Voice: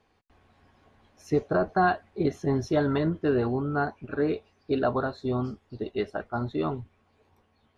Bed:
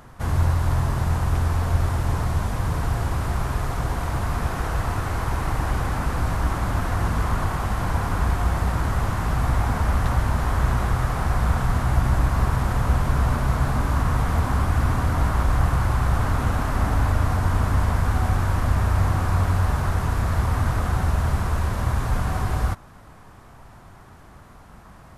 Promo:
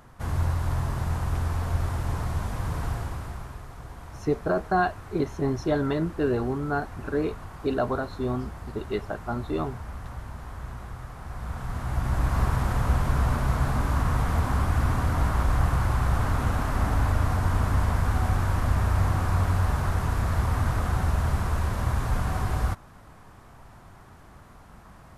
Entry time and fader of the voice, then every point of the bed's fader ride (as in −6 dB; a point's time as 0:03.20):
2.95 s, −0.5 dB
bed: 0:02.89 −5.5 dB
0:03.65 −16.5 dB
0:11.20 −16.5 dB
0:12.36 −3 dB